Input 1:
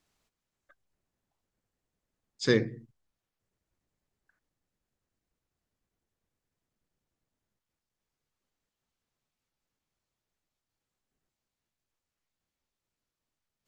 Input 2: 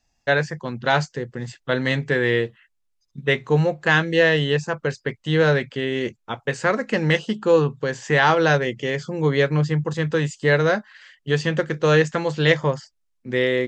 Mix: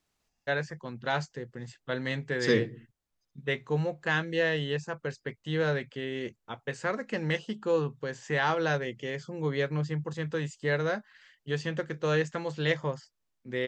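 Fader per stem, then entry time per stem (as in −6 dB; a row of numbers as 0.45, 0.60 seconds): −1.5, −10.5 decibels; 0.00, 0.20 seconds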